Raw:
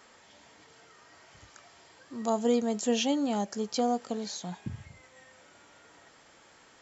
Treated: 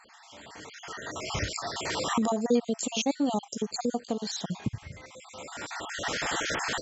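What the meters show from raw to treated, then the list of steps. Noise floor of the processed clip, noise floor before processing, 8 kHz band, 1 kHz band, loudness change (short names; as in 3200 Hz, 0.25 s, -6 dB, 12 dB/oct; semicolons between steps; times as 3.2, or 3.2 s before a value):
-53 dBFS, -58 dBFS, n/a, +2.5 dB, -0.5 dB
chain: random spectral dropouts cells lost 44%; recorder AGC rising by 17 dB/s; downsampling 32000 Hz; gain +3 dB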